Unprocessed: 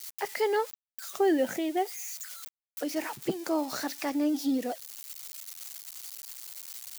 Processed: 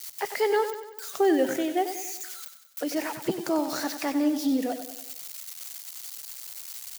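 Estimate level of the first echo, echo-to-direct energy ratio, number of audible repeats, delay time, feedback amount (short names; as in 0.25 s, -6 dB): -10.0 dB, -8.5 dB, 5, 95 ms, 52%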